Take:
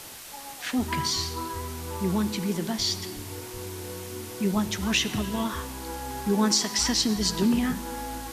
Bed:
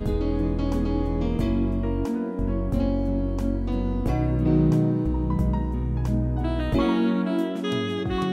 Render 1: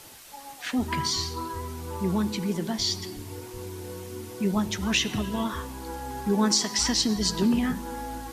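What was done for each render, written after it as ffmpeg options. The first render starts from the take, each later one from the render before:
ffmpeg -i in.wav -af "afftdn=noise_reduction=6:noise_floor=-42" out.wav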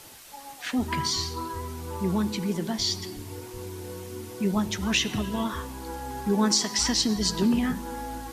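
ffmpeg -i in.wav -af anull out.wav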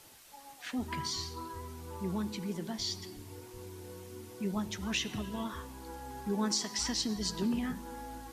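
ffmpeg -i in.wav -af "volume=-9dB" out.wav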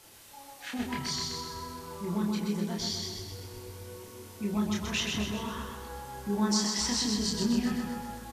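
ffmpeg -i in.wav -filter_complex "[0:a]asplit=2[link_01][link_02];[link_02]adelay=29,volume=-2dB[link_03];[link_01][link_03]amix=inputs=2:normalize=0,aecho=1:1:128|256|384|512|640|768|896|1024:0.631|0.353|0.198|0.111|0.0621|0.0347|0.0195|0.0109" out.wav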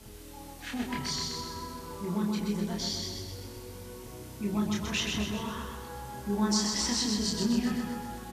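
ffmpeg -i in.wav -i bed.wav -filter_complex "[1:a]volume=-24.5dB[link_01];[0:a][link_01]amix=inputs=2:normalize=0" out.wav

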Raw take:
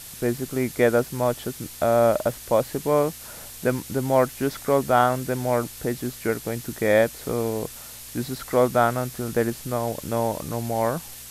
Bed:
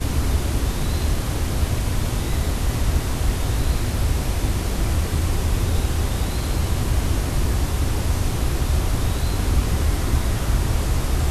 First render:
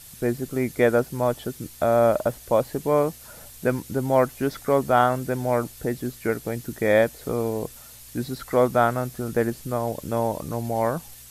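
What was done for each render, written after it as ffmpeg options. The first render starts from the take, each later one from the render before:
ffmpeg -i in.wav -af "afftdn=noise_reduction=7:noise_floor=-41" out.wav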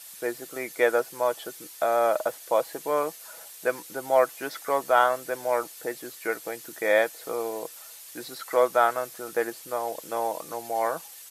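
ffmpeg -i in.wav -af "highpass=560,aecho=1:1:6.1:0.37" out.wav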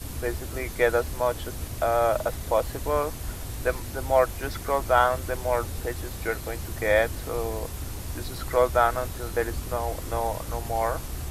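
ffmpeg -i in.wav -i bed.wav -filter_complex "[1:a]volume=-13.5dB[link_01];[0:a][link_01]amix=inputs=2:normalize=0" out.wav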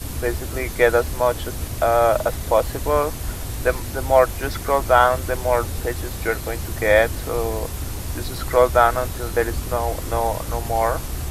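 ffmpeg -i in.wav -af "volume=6dB,alimiter=limit=-2dB:level=0:latency=1" out.wav

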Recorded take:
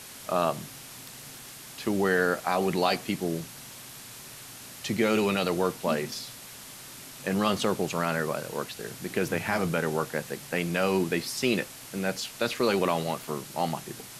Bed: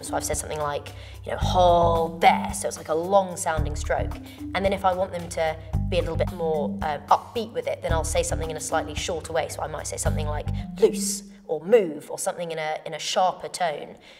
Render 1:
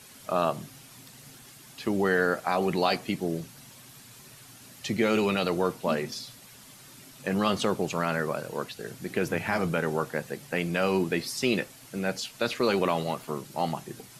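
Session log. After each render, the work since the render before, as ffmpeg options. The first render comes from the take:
ffmpeg -i in.wav -af "afftdn=noise_reduction=8:noise_floor=-45" out.wav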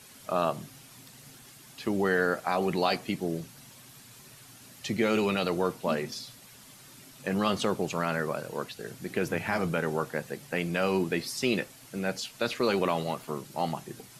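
ffmpeg -i in.wav -af "volume=-1.5dB" out.wav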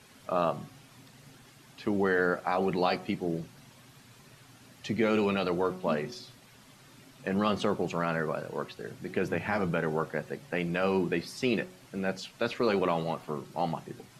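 ffmpeg -i in.wav -af "lowpass=frequency=2800:poles=1,bandreject=frequency=184:width_type=h:width=4,bandreject=frequency=368:width_type=h:width=4,bandreject=frequency=552:width_type=h:width=4,bandreject=frequency=736:width_type=h:width=4,bandreject=frequency=920:width_type=h:width=4,bandreject=frequency=1104:width_type=h:width=4,bandreject=frequency=1288:width_type=h:width=4,bandreject=frequency=1472:width_type=h:width=4" out.wav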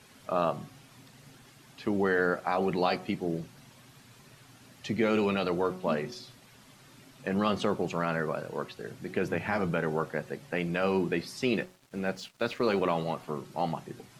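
ffmpeg -i in.wav -filter_complex "[0:a]asettb=1/sr,asplit=3[link_01][link_02][link_03];[link_01]atrim=end=11.604[link_04];[link_02]atrim=start=11.6:end=12.83,asetpts=PTS-STARTPTS,afade=type=in:duration=0.004:curve=qsin,afade=type=out:start_time=1.226:duration=0.004:curve=qsin,aeval=exprs='sgn(val(0))*max(abs(val(0))-0.002,0)':channel_layout=same[link_05];[link_03]atrim=start=12.826[link_06];[link_04][link_05]acrossfade=duration=0.004:curve1=hsin:curve2=qsin[link_07];[link_07][link_06]acrossfade=duration=0.004:curve1=qsin:curve2=hsin" out.wav

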